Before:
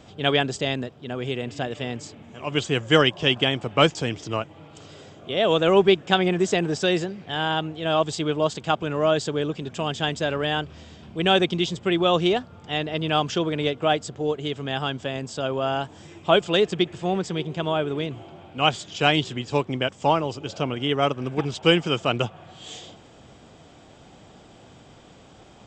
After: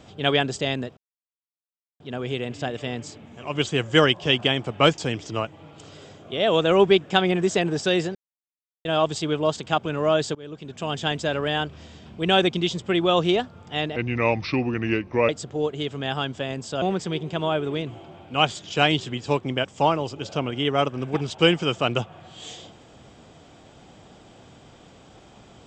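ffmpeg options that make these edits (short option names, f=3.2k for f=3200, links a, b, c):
-filter_complex "[0:a]asplit=8[a][b][c][d][e][f][g][h];[a]atrim=end=0.97,asetpts=PTS-STARTPTS,afade=t=out:st=0.966:d=0.004:c=hsin,apad=pad_dur=1.03[i];[b]atrim=start=0.97:end=7.12,asetpts=PTS-STARTPTS,afade=t=in:d=0.004:c=hsin,afade=t=out:st=6.146:d=0.004:c=hsin[j];[c]atrim=start=7.12:end=7.82,asetpts=PTS-STARTPTS,volume=0[k];[d]atrim=start=7.82:end=9.32,asetpts=PTS-STARTPTS,afade=t=in:d=0.004:c=hsin,afade=t=out:st=1.496:d=0.004:c=hsin:silence=0.0707946[l];[e]atrim=start=9.32:end=12.934,asetpts=PTS-STARTPTS,afade=t=in:d=0.63:silence=0.0707946[m];[f]atrim=start=12.93:end=13.94,asetpts=PTS-STARTPTS,asetrate=33516,aresample=44100[n];[g]atrim=start=13.936:end=15.472[o];[h]atrim=start=17.058[p];[i][j][k][l][m]concat=n=5:v=0:a=1[q];[q][n]acrossfade=d=0.004:c1=hsin:c2=hsin[r];[r][o]acrossfade=d=0.004:c1=hsin:c2=hsin[s];[s][p]acrossfade=d=0.004:c1=hsin:c2=hsin"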